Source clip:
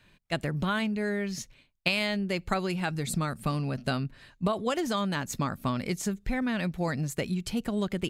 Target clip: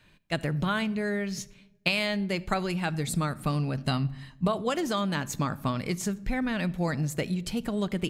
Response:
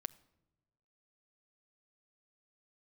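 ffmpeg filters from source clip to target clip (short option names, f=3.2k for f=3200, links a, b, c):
-filter_complex "[0:a]asettb=1/sr,asplit=3[a][b][c];[a]atrim=end=3.844[d];[b]atrim=start=3.84:end=4.45,asetpts=PTS-STARTPTS,afade=t=in:d=0.004:c=qsin,afade=t=out:st=0.606:d=0.004:c=qsin,aecho=1:1:1:0.53,atrim=end_sample=26901[e];[c]atrim=start=4.446[f];[d][e]acrossfade=d=0.004:c1=hsin:c2=qsin[g];[g][f]acrossfade=d=0.004:c1=qsin:c2=hsin[h];[1:a]atrim=start_sample=2205[i];[h][i]afir=irnorm=-1:irlink=0,volume=3.5dB"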